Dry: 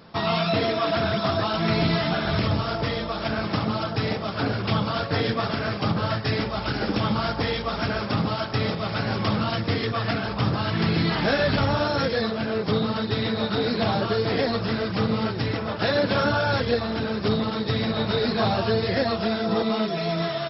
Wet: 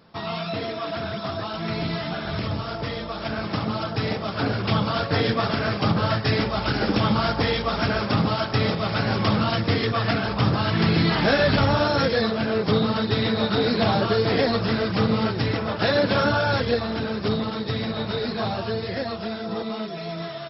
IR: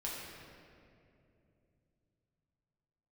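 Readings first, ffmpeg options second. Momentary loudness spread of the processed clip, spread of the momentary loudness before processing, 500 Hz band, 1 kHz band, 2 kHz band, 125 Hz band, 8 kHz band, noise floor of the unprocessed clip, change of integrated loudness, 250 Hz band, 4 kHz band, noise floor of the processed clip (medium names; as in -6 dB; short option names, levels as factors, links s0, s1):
9 LU, 4 LU, +0.5 dB, +1.0 dB, +1.0 dB, +1.5 dB, no reading, -31 dBFS, +1.0 dB, +1.0 dB, +1.0 dB, -32 dBFS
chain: -af "dynaudnorm=f=370:g=21:m=3.76,volume=0.501"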